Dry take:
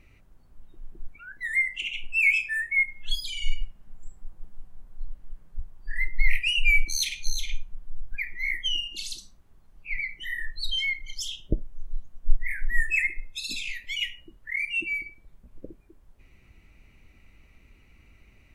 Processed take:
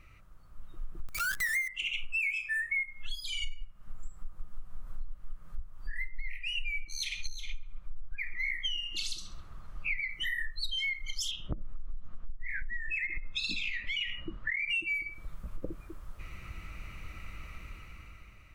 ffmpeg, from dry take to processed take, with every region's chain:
-filter_complex "[0:a]asettb=1/sr,asplit=3[s0][s1][s2];[s0]atrim=end=1.084[s3];[s1]atrim=start=1.08:end=1.68,asetpts=PTS-STARTPTS,afade=t=in:d=0.004:c=qsin,afade=t=out:st=0.596:d=0.004:c=qsin,aeval=exprs='val(0)+0.5*0.0168*sgn(val(0))':c=same,highshelf=f=4400:g=11.5[s4];[s2]atrim=start=1.676[s5];[s3][s4]acrossfade=d=0.004:c1=hsin:c2=qsin[s6];[s6][s5]acrossfade=d=0.004:c1=qsin:c2=hsin,asettb=1/sr,asplit=3[s7][s8][s9];[s7]atrim=end=6.094[s10];[s8]atrim=start=6.09:end=10.1,asetpts=PTS-STARTPTS,afade=t=in:d=0.004:c=qsin,afade=t=out:st=4.006:d=0.004:c=qsin,highshelf=f=8200:g=-11.5,asplit=2[s11][s12];[s12]adelay=134,lowpass=f=1400:p=1,volume=0.2,asplit=2[s13][s14];[s14]adelay=134,lowpass=f=1400:p=1,volume=0.5,asplit=2[s15][s16];[s16]adelay=134,lowpass=f=1400:p=1,volume=0.5,asplit=2[s17][s18];[s18]adelay=134,lowpass=f=1400:p=1,volume=0.5,asplit=2[s19][s20];[s20]adelay=134,lowpass=f=1400:p=1,volume=0.5[s21];[s11][s13][s15][s17][s19][s21]amix=inputs=6:normalize=0,atrim=end_sample=176841[s22];[s9]atrim=start=10.096[s23];[s10][s22]acrossfade=d=0.004:c1=hsin:c2=qsin[s24];[s24][s23]acrossfade=d=0.004:c1=qsin:c2=hsin,asettb=1/sr,asplit=3[s25][s26][s27];[s25]atrim=end=11.314[s28];[s26]atrim=start=11.31:end=14.7,asetpts=PTS-STARTPTS,afade=t=in:d=0.004:c=qsin,afade=t=out:st=3.386:d=0.004:c=qsin,lowpass=3300,equalizer=f=230:t=o:w=0.98:g=7,acompressor=threshold=0.0224:ratio=6:attack=3.2:release=140:knee=1:detection=peak[s29];[s27]atrim=start=14.696[s30];[s28][s29]acrossfade=d=0.004:c1=hsin:c2=qsin[s31];[s31][s30]acrossfade=d=0.004:c1=qsin:c2=hsin,dynaudnorm=f=170:g=11:m=3.76,equalizer=f=250:t=o:w=0.33:g=-10,equalizer=f=400:t=o:w=0.33:g=-7,equalizer=f=800:t=o:w=0.33:g=-4,equalizer=f=1250:t=o:w=0.33:g=12,acompressor=threshold=0.0316:ratio=12"

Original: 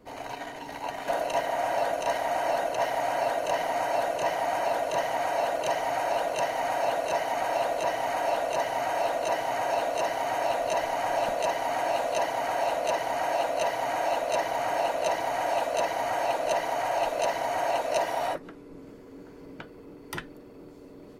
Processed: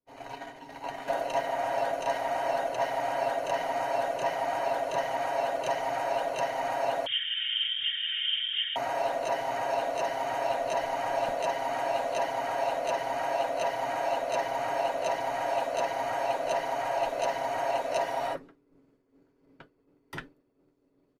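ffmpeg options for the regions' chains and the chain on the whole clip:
-filter_complex "[0:a]asettb=1/sr,asplit=3[s0][s1][s2];[s0]atrim=end=7.064[s3];[s1]atrim=start=7.06:end=8.76,asetpts=PTS-STARTPTS,afade=t=in:d=0.004:c=qsin,afade=t=out:st=1.696:d=0.004:c=qsin,asuperstop=centerf=3000:order=8:qfactor=2,lowpass=f=3200:t=q:w=0.5098,lowpass=f=3200:t=q:w=0.6013,lowpass=f=3200:t=q:w=0.9,lowpass=f=3200:t=q:w=2.563,afreqshift=-3800[s4];[s2]atrim=start=8.756[s5];[s3][s4]acrossfade=d=0.004:c1=hsin:c2=qsin[s6];[s6][s5]acrossfade=d=0.004:c1=qsin:c2=hsin,agate=range=0.0224:threshold=0.02:ratio=3:detection=peak,highshelf=f=6500:g=-5.5,aecho=1:1:7.4:0.36,volume=0.708"

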